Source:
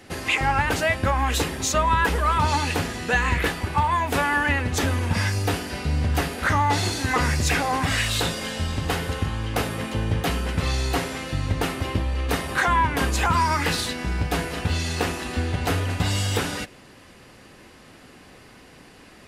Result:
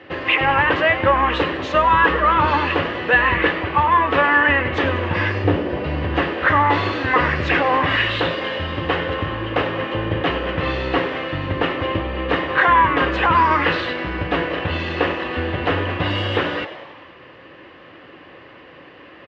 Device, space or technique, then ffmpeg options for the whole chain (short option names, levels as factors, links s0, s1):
frequency-shifting delay pedal into a guitar cabinet: -filter_complex "[0:a]asettb=1/sr,asplit=3[s0][s1][s2];[s0]atrim=end=5.444[s3];[s1]atrim=start=5.44:end=5.84,asetpts=PTS-STARTPTS,afade=t=in:d=0.004:c=qsin,afade=t=out:st=0.396:d=0.004:c=qsin,tiltshelf=f=640:g=7.5[s4];[s2]atrim=start=5.836[s5];[s3][s4]acrossfade=d=0.004:c1=hsin:c2=qsin[s6];[s6][s5]acrossfade=d=0.004:c1=qsin:c2=hsin,asplit=8[s7][s8][s9][s10][s11][s12][s13][s14];[s8]adelay=96,afreqshift=130,volume=0.224[s15];[s9]adelay=192,afreqshift=260,volume=0.138[s16];[s10]adelay=288,afreqshift=390,volume=0.0861[s17];[s11]adelay=384,afreqshift=520,volume=0.0531[s18];[s12]adelay=480,afreqshift=650,volume=0.0331[s19];[s13]adelay=576,afreqshift=780,volume=0.0204[s20];[s14]adelay=672,afreqshift=910,volume=0.0127[s21];[s7][s15][s16][s17][s18][s19][s20][s21]amix=inputs=8:normalize=0,highpass=81,equalizer=f=220:t=q:w=4:g=-7,equalizer=f=320:t=q:w=4:g=8,equalizer=f=540:t=q:w=4:g=9,equalizer=f=1100:t=q:w=4:g=8,equalizer=f=1800:t=q:w=4:g=7,equalizer=f=2900:t=q:w=4:g=6,lowpass=f=3400:w=0.5412,lowpass=f=3400:w=1.3066,volume=1.12"